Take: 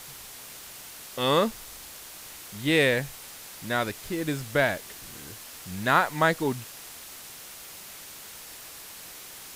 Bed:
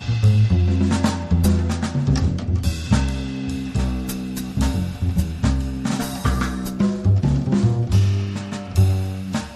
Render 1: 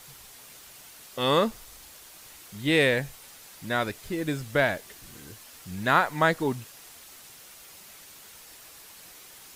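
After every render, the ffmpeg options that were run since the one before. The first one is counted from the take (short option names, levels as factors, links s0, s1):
-af "afftdn=nr=6:nf=-44"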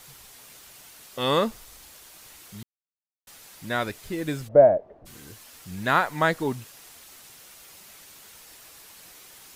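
-filter_complex "[0:a]asplit=3[s0][s1][s2];[s0]afade=t=out:st=4.47:d=0.02[s3];[s1]lowpass=f=620:t=q:w=4.8,afade=t=in:st=4.47:d=0.02,afade=t=out:st=5.05:d=0.02[s4];[s2]afade=t=in:st=5.05:d=0.02[s5];[s3][s4][s5]amix=inputs=3:normalize=0,asplit=3[s6][s7][s8];[s6]atrim=end=2.63,asetpts=PTS-STARTPTS,afade=t=out:st=2.626:d=0.004:c=hsin[s9];[s7]atrim=start=2.63:end=3.27,asetpts=PTS-STARTPTS,volume=0[s10];[s8]atrim=start=3.27,asetpts=PTS-STARTPTS,afade=t=in:d=0.004:c=hsin[s11];[s9][s10][s11]concat=n=3:v=0:a=1"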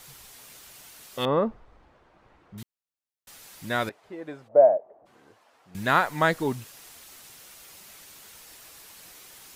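-filter_complex "[0:a]asettb=1/sr,asplit=3[s0][s1][s2];[s0]atrim=end=1.254[s3];[s1]atrim=start=1.25:end=2.58,asetpts=PTS-STARTPTS,afade=t=in:d=0.004:c=qsin,afade=t=out:st=1.326:d=0.004:c=qsin,lowpass=1100[s4];[s2]atrim=start=2.576[s5];[s3][s4]acrossfade=d=0.004:c1=hsin:c2=qsin[s6];[s6][s5]acrossfade=d=0.004:c1=qsin:c2=hsin,asettb=1/sr,asplit=3[s7][s8][s9];[s7]atrim=end=3.894[s10];[s8]atrim=start=3.89:end=5.75,asetpts=PTS-STARTPTS,afade=t=in:d=0.004:c=qsin,afade=t=out:st=1.856:d=0.004:c=qsin,bandpass=f=750:t=q:w=1.4[s11];[s9]atrim=start=5.746[s12];[s10][s11]acrossfade=d=0.004:c1=hsin:c2=qsin[s13];[s13][s12]acrossfade=d=0.004:c1=qsin:c2=hsin"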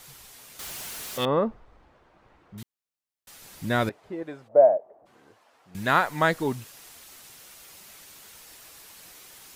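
-filter_complex "[0:a]asettb=1/sr,asplit=3[s0][s1][s2];[s0]atrim=end=0.594[s3];[s1]atrim=start=0.59:end=1.25,asetpts=PTS-STARTPTS,afade=t=in:d=0.004:c=qsin,afade=t=out:st=0.656:d=0.004:c=qsin,aeval=exprs='val(0)+0.5*0.02*sgn(val(0))':c=same[s4];[s2]atrim=start=1.246[s5];[s3][s4]acrossfade=d=0.004:c1=hsin:c2=qsin[s6];[s6][s5]acrossfade=d=0.004:c1=qsin:c2=hsin,asettb=1/sr,asplit=3[s7][s8][s9];[s7]atrim=end=3.424[s10];[s8]atrim=start=3.42:end=4.23,asetpts=PTS-STARTPTS,afade=t=in:d=0.004:c=qsin,afade=t=out:st=0.806:d=0.004:c=qsin,lowshelf=f=410:g=8.5[s11];[s9]atrim=start=4.226[s12];[s10][s11]acrossfade=d=0.004:c1=hsin:c2=qsin[s13];[s13][s12]acrossfade=d=0.004:c1=qsin:c2=hsin"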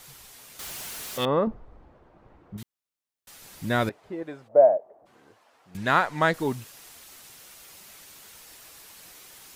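-filter_complex "[0:a]asettb=1/sr,asplit=3[s0][s1][s2];[s0]atrim=end=1.474[s3];[s1]atrim=start=1.47:end=2.57,asetpts=PTS-STARTPTS,afade=t=in:d=0.004:c=qsin,afade=t=out:st=1.096:d=0.004:c=qsin,tiltshelf=f=1100:g=6.5[s4];[s2]atrim=start=2.566[s5];[s3][s4]acrossfade=d=0.004:c1=hsin:c2=qsin[s6];[s6][s5]acrossfade=d=0.004:c1=qsin:c2=hsin,asettb=1/sr,asplit=3[s7][s8][s9];[s7]atrim=end=5.774[s10];[s8]atrim=start=5.77:end=6.34,asetpts=PTS-STARTPTS,afade=t=in:d=0.004:c=qsin,afade=t=out:st=0.566:d=0.004:c=qsin,adynamicsmooth=sensitivity=7:basefreq=6800[s11];[s9]atrim=start=6.336[s12];[s10][s11]acrossfade=d=0.004:c1=hsin:c2=qsin[s13];[s13][s12]acrossfade=d=0.004:c1=qsin:c2=hsin"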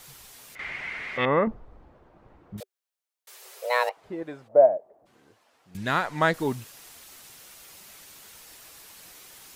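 -filter_complex "[0:a]asettb=1/sr,asplit=3[s0][s1][s2];[s0]atrim=end=0.554[s3];[s1]atrim=start=0.55:end=1.48,asetpts=PTS-STARTPTS,afade=t=in:d=0.004:c=qsin,afade=t=out:st=0.926:d=0.004:c=qsin,lowpass=f=2100:t=q:w=8.7[s4];[s2]atrim=start=1.476[s5];[s3][s4]acrossfade=d=0.004:c1=hsin:c2=qsin[s6];[s6][s5]acrossfade=d=0.004:c1=qsin:c2=hsin,asettb=1/sr,asplit=3[s7][s8][s9];[s7]atrim=end=2.604[s10];[s8]atrim=start=2.6:end=3.97,asetpts=PTS-STARTPTS,afade=t=in:d=0.004:c=qsin,afade=t=out:st=1.366:d=0.004:c=qsin,afreqshift=370[s11];[s9]atrim=start=3.966[s12];[s10][s11]acrossfade=d=0.004:c1=hsin:c2=qsin[s13];[s13][s12]acrossfade=d=0.004:c1=qsin:c2=hsin,asettb=1/sr,asplit=3[s14][s15][s16];[s14]atrim=end=4.664[s17];[s15]atrim=start=4.66:end=6.05,asetpts=PTS-STARTPTS,afade=t=in:d=0.004:c=qsin,afade=t=out:st=1.386:d=0.004:c=qsin,equalizer=f=920:w=0.54:g=-5[s18];[s16]atrim=start=6.046[s19];[s17][s18]acrossfade=d=0.004:c1=hsin:c2=qsin[s20];[s20][s19]acrossfade=d=0.004:c1=qsin:c2=hsin"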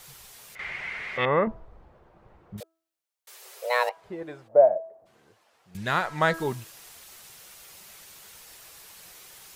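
-af "equalizer=f=270:t=o:w=0.29:g=-9.5,bandreject=f=326.8:t=h:w=4,bandreject=f=653.6:t=h:w=4,bandreject=f=980.4:t=h:w=4,bandreject=f=1307.2:t=h:w=4,bandreject=f=1634:t=h:w=4"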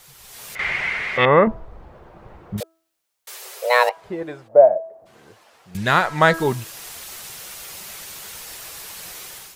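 -af "dynaudnorm=f=140:g=5:m=3.98"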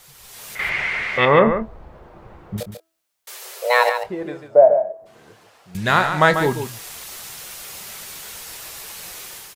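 -filter_complex "[0:a]asplit=2[s0][s1];[s1]adelay=27,volume=0.237[s2];[s0][s2]amix=inputs=2:normalize=0,aecho=1:1:142:0.376"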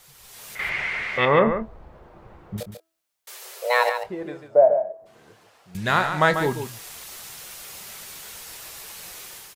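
-af "volume=0.631"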